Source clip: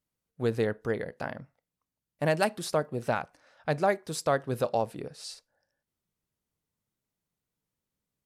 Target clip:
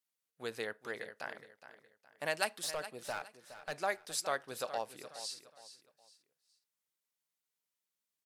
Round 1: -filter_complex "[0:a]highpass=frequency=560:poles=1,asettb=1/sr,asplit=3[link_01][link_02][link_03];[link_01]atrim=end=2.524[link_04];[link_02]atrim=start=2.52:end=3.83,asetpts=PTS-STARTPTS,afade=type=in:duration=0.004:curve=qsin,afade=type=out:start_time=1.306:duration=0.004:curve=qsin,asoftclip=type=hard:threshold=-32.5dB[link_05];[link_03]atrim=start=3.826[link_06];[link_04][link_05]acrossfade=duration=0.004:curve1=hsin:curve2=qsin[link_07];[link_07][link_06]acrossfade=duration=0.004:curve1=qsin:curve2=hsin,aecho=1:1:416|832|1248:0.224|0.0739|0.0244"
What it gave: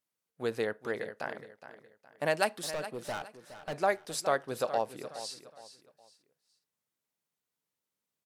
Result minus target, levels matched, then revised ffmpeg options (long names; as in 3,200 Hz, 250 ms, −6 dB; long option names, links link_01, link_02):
2,000 Hz band −2.5 dB
-filter_complex "[0:a]highpass=frequency=2000:poles=1,asettb=1/sr,asplit=3[link_01][link_02][link_03];[link_01]atrim=end=2.524[link_04];[link_02]atrim=start=2.52:end=3.83,asetpts=PTS-STARTPTS,afade=type=in:duration=0.004:curve=qsin,afade=type=out:start_time=1.306:duration=0.004:curve=qsin,asoftclip=type=hard:threshold=-32.5dB[link_05];[link_03]atrim=start=3.826[link_06];[link_04][link_05]acrossfade=duration=0.004:curve1=hsin:curve2=qsin[link_07];[link_07][link_06]acrossfade=duration=0.004:curve1=qsin:curve2=hsin,aecho=1:1:416|832|1248:0.224|0.0739|0.0244"